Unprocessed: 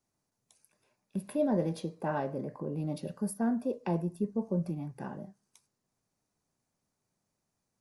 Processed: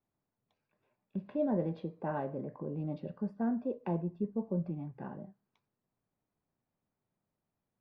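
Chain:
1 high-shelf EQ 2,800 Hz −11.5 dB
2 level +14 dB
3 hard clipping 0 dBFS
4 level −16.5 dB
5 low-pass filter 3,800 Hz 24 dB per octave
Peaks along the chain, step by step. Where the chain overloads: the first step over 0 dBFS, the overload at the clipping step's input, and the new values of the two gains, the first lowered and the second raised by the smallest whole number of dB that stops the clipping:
−18.5, −4.5, −4.5, −21.0, −21.0 dBFS
no step passes full scale

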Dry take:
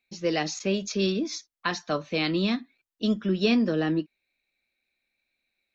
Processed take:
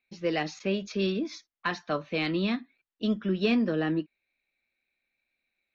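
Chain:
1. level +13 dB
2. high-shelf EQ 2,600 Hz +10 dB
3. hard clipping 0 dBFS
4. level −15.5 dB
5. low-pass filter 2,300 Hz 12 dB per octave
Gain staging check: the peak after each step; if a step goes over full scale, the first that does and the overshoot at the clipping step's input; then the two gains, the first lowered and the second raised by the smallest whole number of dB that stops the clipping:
+1.5, +5.0, 0.0, −15.5, −15.5 dBFS
step 1, 5.0 dB
step 1 +8 dB, step 4 −10.5 dB

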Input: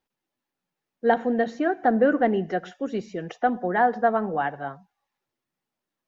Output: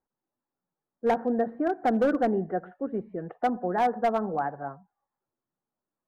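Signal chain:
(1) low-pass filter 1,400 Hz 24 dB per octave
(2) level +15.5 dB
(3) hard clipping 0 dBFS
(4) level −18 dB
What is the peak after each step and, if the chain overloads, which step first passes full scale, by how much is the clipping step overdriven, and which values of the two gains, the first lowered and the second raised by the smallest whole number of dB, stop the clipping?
−8.5, +7.0, 0.0, −18.0 dBFS
step 2, 7.0 dB
step 2 +8.5 dB, step 4 −11 dB

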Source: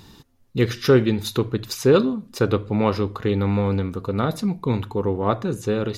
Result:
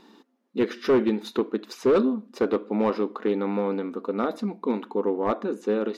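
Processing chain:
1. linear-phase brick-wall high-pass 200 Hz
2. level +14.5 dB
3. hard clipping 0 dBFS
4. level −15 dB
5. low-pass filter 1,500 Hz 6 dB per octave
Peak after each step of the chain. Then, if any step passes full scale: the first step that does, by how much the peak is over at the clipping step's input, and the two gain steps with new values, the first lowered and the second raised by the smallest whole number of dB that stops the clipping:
−5.0, +9.5, 0.0, −15.0, −15.0 dBFS
step 2, 9.5 dB
step 2 +4.5 dB, step 4 −5 dB

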